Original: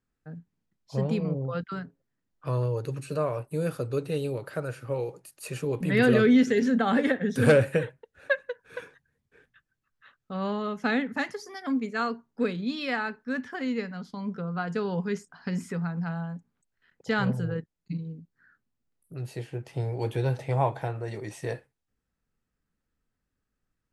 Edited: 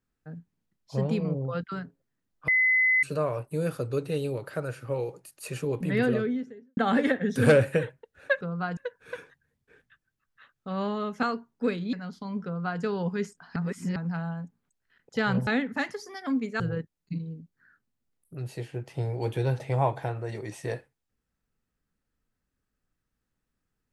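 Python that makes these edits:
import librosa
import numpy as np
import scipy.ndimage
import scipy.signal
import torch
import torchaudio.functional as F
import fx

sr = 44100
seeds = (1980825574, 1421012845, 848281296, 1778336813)

y = fx.studio_fade_out(x, sr, start_s=5.58, length_s=1.19)
y = fx.edit(y, sr, fx.bleep(start_s=2.48, length_s=0.55, hz=2030.0, db=-19.0),
    fx.move(start_s=10.87, length_s=1.13, to_s=17.39),
    fx.cut(start_s=12.7, length_s=1.15),
    fx.duplicate(start_s=14.37, length_s=0.36, to_s=8.41),
    fx.reverse_span(start_s=15.48, length_s=0.4), tone=tone)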